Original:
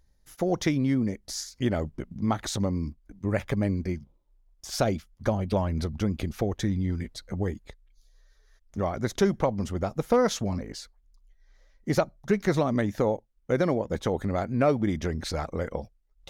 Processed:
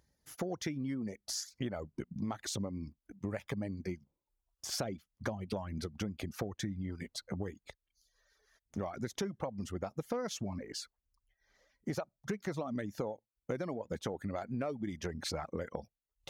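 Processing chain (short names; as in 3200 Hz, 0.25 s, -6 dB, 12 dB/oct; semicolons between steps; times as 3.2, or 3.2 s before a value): notch 3800 Hz, Q 21; in parallel at -11.5 dB: soft clip -19 dBFS, distortion -15 dB; on the sum: reverb removal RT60 0.78 s; HPF 97 Hz 12 dB/oct; compressor 6:1, threshold -32 dBFS, peak gain reduction 14.5 dB; gain -2.5 dB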